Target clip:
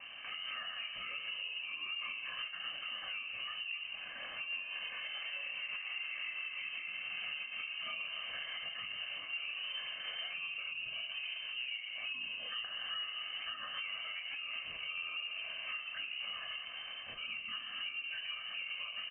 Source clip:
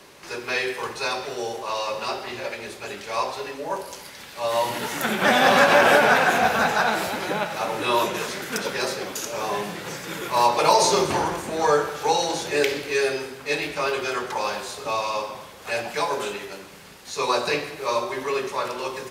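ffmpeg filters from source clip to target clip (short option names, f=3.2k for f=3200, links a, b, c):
-af "tiltshelf=f=1.2k:g=5,bandreject=f=50:t=h:w=6,bandreject=f=100:t=h:w=6,bandreject=f=150:t=h:w=6,bandreject=f=200:t=h:w=6,bandreject=f=250:t=h:w=6,aecho=1:1:1.5:0.62,acompressor=threshold=-31dB:ratio=16,alimiter=level_in=7dB:limit=-24dB:level=0:latency=1:release=222,volume=-7dB,flanger=delay=18:depth=6.6:speed=1.2,afreqshift=-160,volume=35.5dB,asoftclip=hard,volume=-35.5dB,asetrate=34006,aresample=44100,atempo=1.29684,aecho=1:1:276:0.178,lowpass=f=2.6k:t=q:w=0.5098,lowpass=f=2.6k:t=q:w=0.6013,lowpass=f=2.6k:t=q:w=0.9,lowpass=f=2.6k:t=q:w=2.563,afreqshift=-3100,volume=1.5dB"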